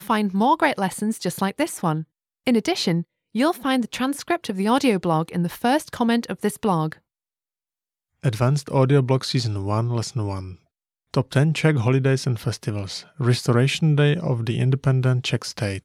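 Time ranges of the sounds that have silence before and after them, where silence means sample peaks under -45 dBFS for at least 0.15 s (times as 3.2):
2.46–3.03
3.35–6.98
8.24–10.56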